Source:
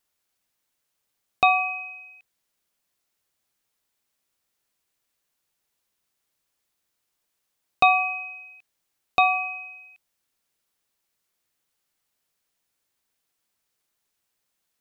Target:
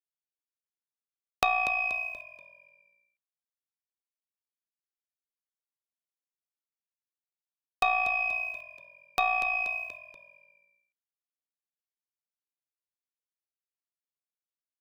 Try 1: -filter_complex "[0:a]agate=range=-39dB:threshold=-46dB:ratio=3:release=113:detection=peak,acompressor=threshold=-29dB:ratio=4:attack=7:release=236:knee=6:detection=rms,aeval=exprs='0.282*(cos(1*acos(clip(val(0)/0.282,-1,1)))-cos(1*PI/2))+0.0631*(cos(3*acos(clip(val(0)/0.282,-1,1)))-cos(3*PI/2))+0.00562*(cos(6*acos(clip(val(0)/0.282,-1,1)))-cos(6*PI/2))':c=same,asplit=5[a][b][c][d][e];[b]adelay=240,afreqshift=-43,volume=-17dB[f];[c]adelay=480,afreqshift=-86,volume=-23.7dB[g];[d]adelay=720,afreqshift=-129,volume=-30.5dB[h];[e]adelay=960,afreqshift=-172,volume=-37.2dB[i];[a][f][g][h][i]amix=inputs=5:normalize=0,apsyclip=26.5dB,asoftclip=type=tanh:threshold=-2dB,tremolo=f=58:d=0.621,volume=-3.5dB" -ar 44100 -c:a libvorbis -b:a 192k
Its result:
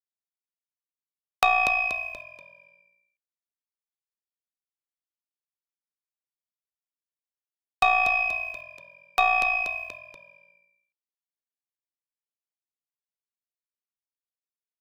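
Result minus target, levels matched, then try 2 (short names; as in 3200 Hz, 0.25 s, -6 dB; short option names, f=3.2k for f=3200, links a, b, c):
compressor: peak gain reduction -5 dB
-filter_complex "[0:a]agate=range=-39dB:threshold=-46dB:ratio=3:release=113:detection=peak,acompressor=threshold=-36dB:ratio=4:attack=7:release=236:knee=6:detection=rms,aeval=exprs='0.282*(cos(1*acos(clip(val(0)/0.282,-1,1)))-cos(1*PI/2))+0.0631*(cos(3*acos(clip(val(0)/0.282,-1,1)))-cos(3*PI/2))+0.00562*(cos(6*acos(clip(val(0)/0.282,-1,1)))-cos(6*PI/2))':c=same,asplit=5[a][b][c][d][e];[b]adelay=240,afreqshift=-43,volume=-17dB[f];[c]adelay=480,afreqshift=-86,volume=-23.7dB[g];[d]adelay=720,afreqshift=-129,volume=-30.5dB[h];[e]adelay=960,afreqshift=-172,volume=-37.2dB[i];[a][f][g][h][i]amix=inputs=5:normalize=0,apsyclip=26.5dB,asoftclip=type=tanh:threshold=-2dB,tremolo=f=58:d=0.621,volume=-3.5dB" -ar 44100 -c:a libvorbis -b:a 192k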